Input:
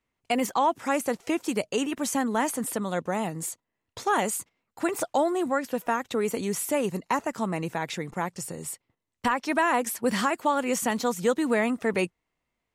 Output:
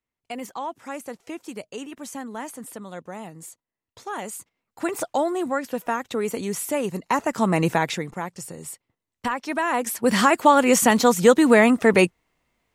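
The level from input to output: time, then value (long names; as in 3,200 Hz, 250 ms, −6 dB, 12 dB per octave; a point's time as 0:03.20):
0:04.11 −8 dB
0:04.89 +1 dB
0:06.92 +1 dB
0:07.70 +11 dB
0:08.21 −1 dB
0:09.62 −1 dB
0:10.37 +9.5 dB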